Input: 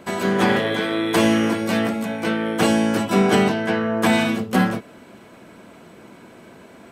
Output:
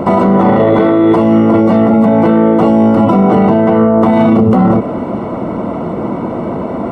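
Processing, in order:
Savitzky-Golay smoothing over 65 samples
notch filter 400 Hz, Q 12
boost into a limiter +28.5 dB
level −1 dB

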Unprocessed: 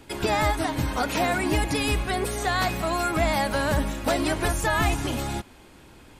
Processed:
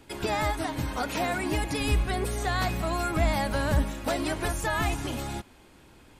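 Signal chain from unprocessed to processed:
0:01.80–0:03.84: low-shelf EQ 160 Hz +8 dB
level −4.5 dB

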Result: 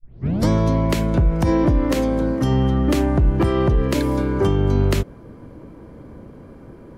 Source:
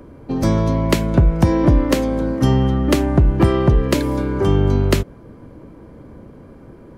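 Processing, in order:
turntable start at the beginning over 0.48 s
brickwall limiter −9 dBFS, peak gain reduction 7.5 dB

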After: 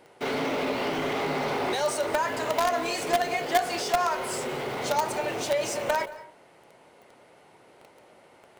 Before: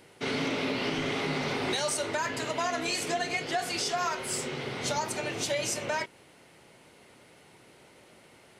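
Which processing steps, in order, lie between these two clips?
parametric band 740 Hz +11 dB 2.3 octaves
in parallel at −9.5 dB: log-companded quantiser 2 bits
on the sum: convolution reverb RT60 0.40 s, pre-delay 167 ms, DRR 16 dB
level −6 dB

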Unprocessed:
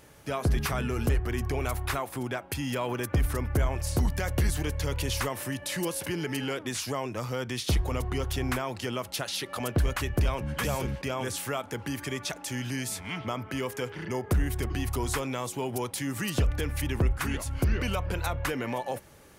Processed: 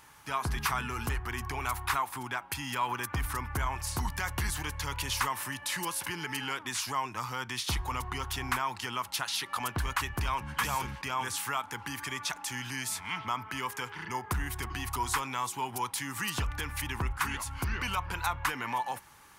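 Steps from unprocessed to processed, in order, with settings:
low shelf with overshoot 730 Hz −8 dB, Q 3

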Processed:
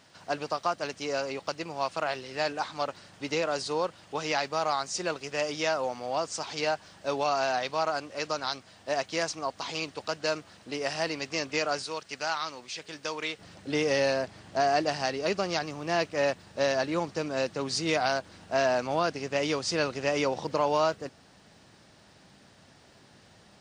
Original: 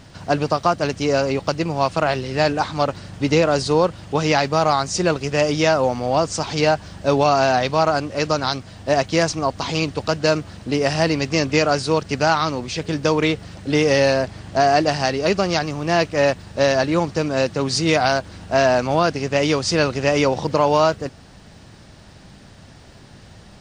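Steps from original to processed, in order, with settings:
high-pass filter 610 Hz 6 dB per octave, from 0:11.84 1,400 Hz, from 0:13.39 260 Hz
level −8.5 dB

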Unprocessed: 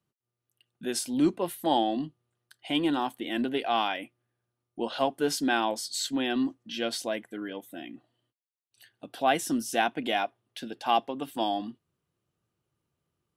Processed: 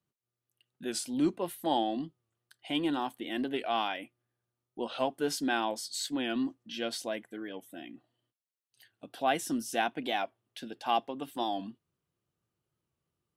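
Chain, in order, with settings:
wow of a warped record 45 rpm, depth 100 cents
level −4 dB

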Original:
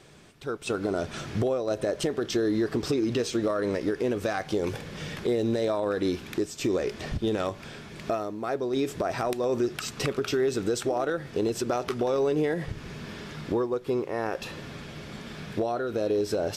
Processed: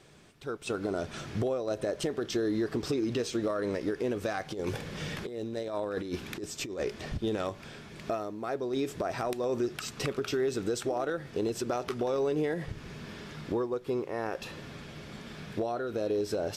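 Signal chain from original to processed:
0:04.51–0:06.87: compressor whose output falls as the input rises −29 dBFS, ratio −0.5
level −4 dB

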